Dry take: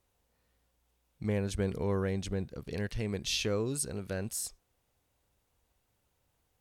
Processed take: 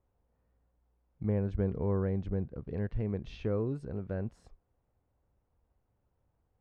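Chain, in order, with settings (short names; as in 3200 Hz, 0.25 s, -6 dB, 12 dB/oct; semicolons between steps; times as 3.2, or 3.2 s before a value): LPF 1200 Hz 12 dB/oct; low shelf 200 Hz +5 dB; gain -1.5 dB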